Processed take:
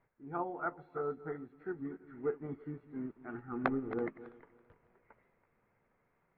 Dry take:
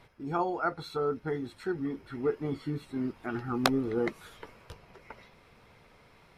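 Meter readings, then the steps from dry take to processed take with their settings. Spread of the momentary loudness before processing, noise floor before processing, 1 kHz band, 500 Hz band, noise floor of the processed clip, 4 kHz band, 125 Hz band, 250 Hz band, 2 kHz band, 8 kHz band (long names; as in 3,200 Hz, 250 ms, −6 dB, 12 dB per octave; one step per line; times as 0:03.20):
22 LU, −59 dBFS, −7.0 dB, −7.0 dB, −77 dBFS, below −25 dB, −9.5 dB, −7.5 dB, −6.5 dB, below −30 dB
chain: feedback delay that plays each chunk backwards 165 ms, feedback 53%, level −11 dB
Chebyshev low-pass filter 1,900 Hz, order 3
parametric band 65 Hz −9.5 dB 0.91 octaves
expander for the loud parts 1.5 to 1, over −47 dBFS
level −4 dB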